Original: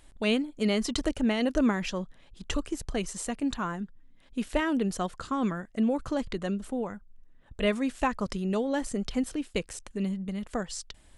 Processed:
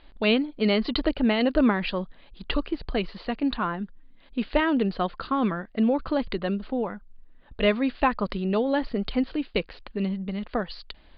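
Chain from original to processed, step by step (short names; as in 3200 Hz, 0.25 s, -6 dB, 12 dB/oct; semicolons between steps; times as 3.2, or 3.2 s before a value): Chebyshev low-pass 4700 Hz, order 8; bell 98 Hz -10 dB 0.93 oct; gain +5.5 dB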